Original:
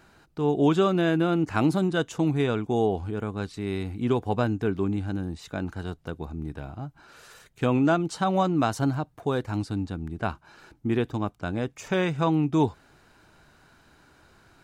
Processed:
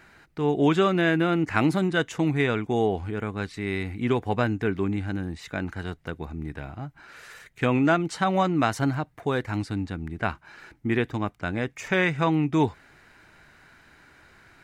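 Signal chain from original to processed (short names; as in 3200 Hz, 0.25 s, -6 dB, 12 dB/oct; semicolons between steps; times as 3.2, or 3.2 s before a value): bell 2000 Hz +11.5 dB 0.69 oct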